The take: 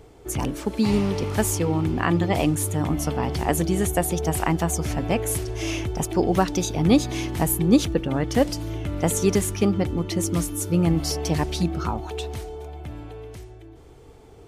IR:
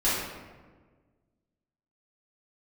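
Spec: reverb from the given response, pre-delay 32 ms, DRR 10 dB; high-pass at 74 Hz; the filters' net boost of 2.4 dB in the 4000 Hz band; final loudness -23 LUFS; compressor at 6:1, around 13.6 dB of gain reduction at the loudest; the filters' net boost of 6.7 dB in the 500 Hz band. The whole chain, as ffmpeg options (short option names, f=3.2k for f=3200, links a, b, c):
-filter_complex "[0:a]highpass=74,equalizer=f=500:t=o:g=8.5,equalizer=f=4k:t=o:g=3,acompressor=threshold=-23dB:ratio=6,asplit=2[a][b];[1:a]atrim=start_sample=2205,adelay=32[c];[b][c]afir=irnorm=-1:irlink=0,volume=-23dB[d];[a][d]amix=inputs=2:normalize=0,volume=5dB"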